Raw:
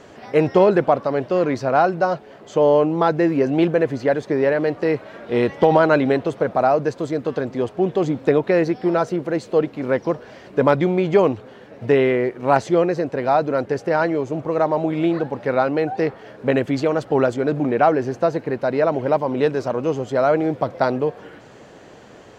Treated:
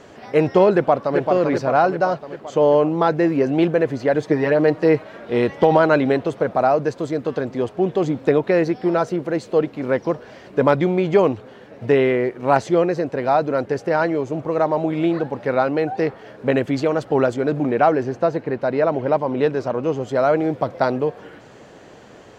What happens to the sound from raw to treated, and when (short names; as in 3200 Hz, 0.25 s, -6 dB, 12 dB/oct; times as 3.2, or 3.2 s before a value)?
0.74–1.18 echo throw 0.39 s, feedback 60%, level -5 dB
4.14–5.03 comb 6.4 ms, depth 76%
18.03–20.01 high shelf 6900 Hz -10 dB